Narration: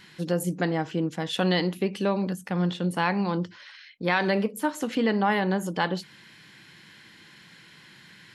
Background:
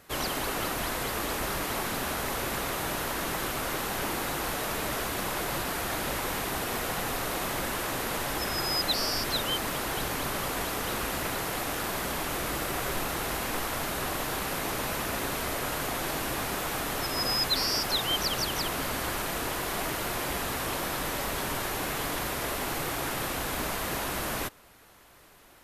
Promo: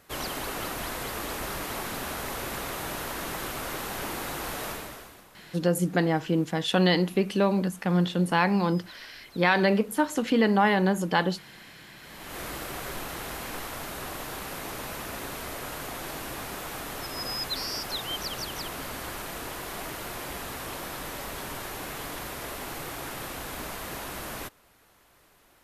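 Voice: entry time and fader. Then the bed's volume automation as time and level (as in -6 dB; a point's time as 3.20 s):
5.35 s, +2.0 dB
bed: 4.69 s -2.5 dB
5.29 s -23 dB
11.95 s -23 dB
12.40 s -5 dB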